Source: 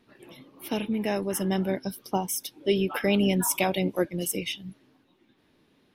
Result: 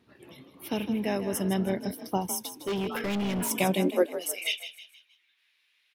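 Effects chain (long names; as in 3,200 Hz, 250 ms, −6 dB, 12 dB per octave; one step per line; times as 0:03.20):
high-pass filter sweep 73 Hz → 2,300 Hz, 0:03.46–0:04.50
echo with shifted repeats 157 ms, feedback 42%, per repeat +36 Hz, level −11.5 dB
0:02.38–0:03.51: hard clipping −25 dBFS, distortion −10 dB
level −2 dB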